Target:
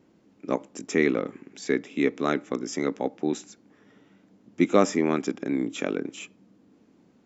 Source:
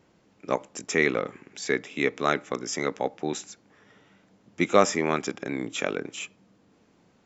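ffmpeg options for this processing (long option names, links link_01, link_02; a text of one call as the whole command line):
ffmpeg -i in.wav -af "equalizer=frequency=270:width_type=o:width=1.3:gain=11,volume=-4.5dB" out.wav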